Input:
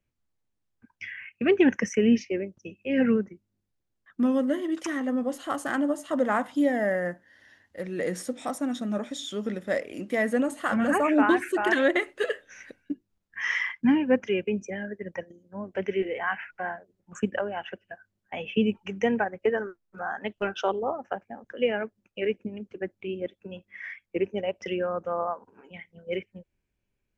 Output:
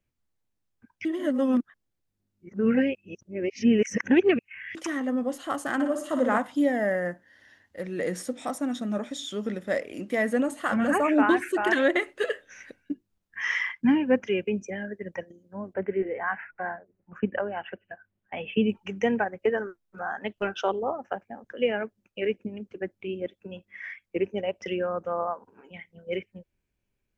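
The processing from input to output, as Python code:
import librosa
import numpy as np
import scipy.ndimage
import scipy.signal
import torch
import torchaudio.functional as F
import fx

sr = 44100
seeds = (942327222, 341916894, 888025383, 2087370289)

y = fx.room_flutter(x, sr, wall_m=9.9, rt60_s=0.58, at=(5.74, 6.38))
y = fx.lowpass(y, sr, hz=fx.line((15.73, 1700.0), (18.68, 3600.0)), slope=24, at=(15.73, 18.68), fade=0.02)
y = fx.edit(y, sr, fx.reverse_span(start_s=1.05, length_s=3.7), tone=tone)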